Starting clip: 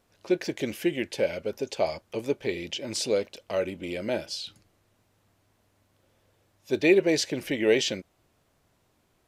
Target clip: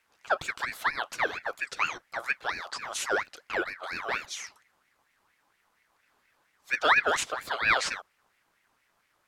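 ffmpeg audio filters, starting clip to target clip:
-af "aeval=exprs='val(0)*sin(2*PI*1500*n/s+1500*0.4/4.3*sin(2*PI*4.3*n/s))':c=same"

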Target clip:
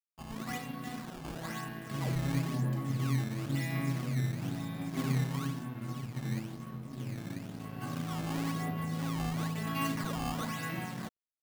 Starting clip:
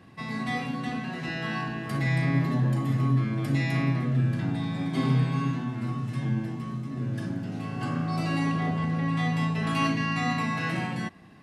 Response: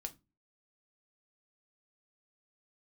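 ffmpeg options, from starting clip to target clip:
-af "bandreject=f=240.5:t=h:w=4,bandreject=f=481:t=h:w=4,bandreject=f=721.5:t=h:w=4,bandreject=f=962:t=h:w=4,bandreject=f=1.2025k:t=h:w=4,bandreject=f=1.443k:t=h:w=4,bandreject=f=1.6835k:t=h:w=4,bandreject=f=1.924k:t=h:w=4,bandreject=f=2.1645k:t=h:w=4,bandreject=f=2.405k:t=h:w=4,bandreject=f=2.6455k:t=h:w=4,bandreject=f=2.886k:t=h:w=4,bandreject=f=3.1265k:t=h:w=4,bandreject=f=3.367k:t=h:w=4,bandreject=f=3.6075k:t=h:w=4,bandreject=f=3.848k:t=h:w=4,acrusher=samples=13:mix=1:aa=0.000001:lfo=1:lforange=20.8:lforate=1,aeval=exprs='sgn(val(0))*max(abs(val(0))-0.0075,0)':c=same,volume=-6.5dB"

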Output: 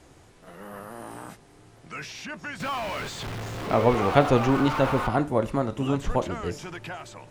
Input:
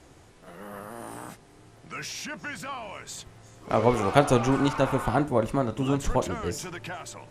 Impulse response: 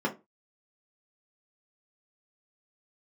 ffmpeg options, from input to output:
-filter_complex "[0:a]asettb=1/sr,asplit=3[a][b][c];[a]atrim=end=2.604[d];[b]atrim=start=2.6:end=5.07,asetpts=PTS-STARTPTS,afade=t=in:d=0.004:c=qsin,afade=t=out:st=2.466:d=0.004:c=qsin,aeval=exprs='val(0)+0.5*0.0398*sgn(val(0))':c=same[e];[c]atrim=start=5.066[f];[d][e]acrossfade=d=0.004:c1=hsin:c2=qsin[g];[g][f]acrossfade=d=0.004:c1=qsin:c2=hsin,acrossover=split=4500[h][i];[i]acompressor=threshold=-49dB:ratio=4:attack=1:release=60[j];[h][j]amix=inputs=2:normalize=0"

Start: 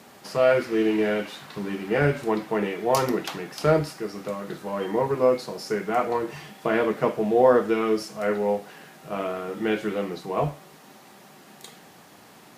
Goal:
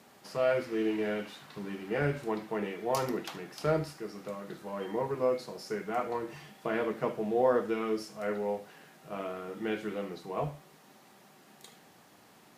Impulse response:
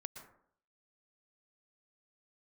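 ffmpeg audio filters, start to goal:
-filter_complex "[1:a]atrim=start_sample=2205,afade=t=out:st=0.16:d=0.01,atrim=end_sample=7497,asetrate=66150,aresample=44100[a];[0:a][a]afir=irnorm=-1:irlink=0"

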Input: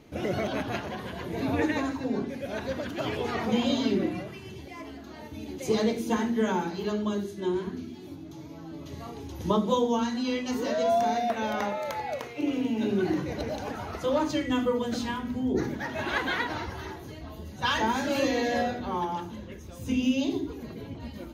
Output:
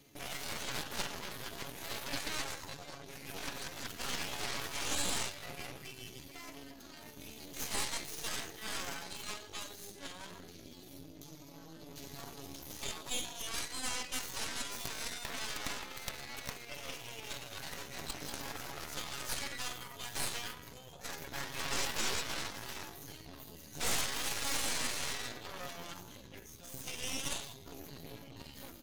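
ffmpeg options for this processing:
-filter_complex "[0:a]highpass=41,afftfilt=real='re*lt(hypot(re,im),0.112)':imag='im*lt(hypot(re,im),0.112)':win_size=1024:overlap=0.75,acrossover=split=6100[a][b];[b]acompressor=threshold=-54dB:ratio=4:attack=1:release=60[c];[a][c]amix=inputs=2:normalize=0,lowshelf=f=410:g=4,aecho=1:1:7.2:0.4,areverse,acompressor=mode=upward:threshold=-44dB:ratio=2.5,areverse,atempo=0.74,crystalizer=i=7:c=0,aeval=exprs='0.355*(cos(1*acos(clip(val(0)/0.355,-1,1)))-cos(1*PI/2))+0.178*(cos(3*acos(clip(val(0)/0.355,-1,1)))-cos(3*PI/2))+0.0251*(cos(5*acos(clip(val(0)/0.355,-1,1)))-cos(5*PI/2))+0.0355*(cos(6*acos(clip(val(0)/0.355,-1,1)))-cos(6*PI/2))':c=same,asoftclip=type=tanh:threshold=-21.5dB,volume=1.5dB"

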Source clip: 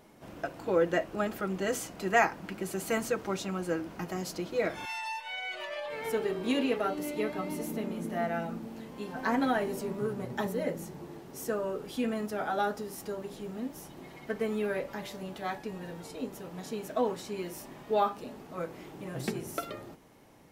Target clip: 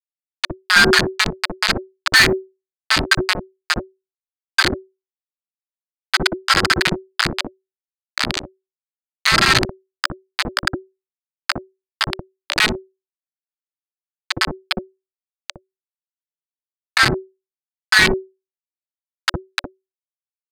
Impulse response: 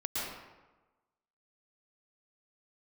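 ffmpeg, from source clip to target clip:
-filter_complex "[0:a]afftfilt=real='real(if(lt(b,272),68*(eq(floor(b/68),0)*2+eq(floor(b/68),1)*0+eq(floor(b/68),2)*3+eq(floor(b/68),3)*1)+mod(b,68),b),0)':imag='imag(if(lt(b,272),68*(eq(floor(b/68),0)*2+eq(floor(b/68),1)*0+eq(floor(b/68),2)*3+eq(floor(b/68),3)*1)+mod(b,68),b),0)':win_size=2048:overlap=0.75,aresample=11025,acrusher=bits=3:mix=0:aa=0.000001,aresample=44100,equalizer=f=290:t=o:w=0.2:g=-3,bandreject=f=950:w=23,aeval=exprs='(tanh(12.6*val(0)+0.45)-tanh(0.45))/12.6':c=same,afreqshift=-380,acrossover=split=730[a][b];[a]adelay=60[c];[c][b]amix=inputs=2:normalize=0,alimiter=level_in=22.5dB:limit=-1dB:release=50:level=0:latency=1,volume=-1dB"

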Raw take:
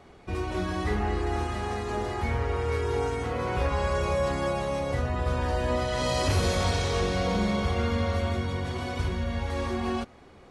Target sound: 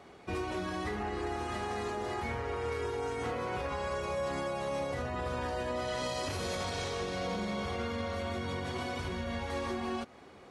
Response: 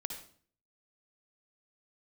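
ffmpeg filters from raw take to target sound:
-af "highpass=f=190:p=1,alimiter=level_in=2.5dB:limit=-24dB:level=0:latency=1:release=180,volume=-2.5dB"

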